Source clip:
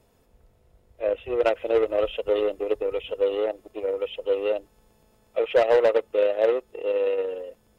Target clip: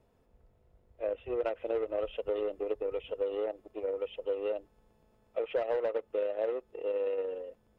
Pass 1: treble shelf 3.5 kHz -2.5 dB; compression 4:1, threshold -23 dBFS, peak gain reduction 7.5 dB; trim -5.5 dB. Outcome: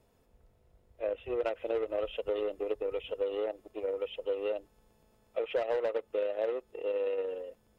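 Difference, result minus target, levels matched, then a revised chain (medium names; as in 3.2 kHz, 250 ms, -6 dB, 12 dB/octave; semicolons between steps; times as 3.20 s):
4 kHz band +4.0 dB
treble shelf 3.5 kHz -12.5 dB; compression 4:1, threshold -23 dBFS, peak gain reduction 7.5 dB; trim -5.5 dB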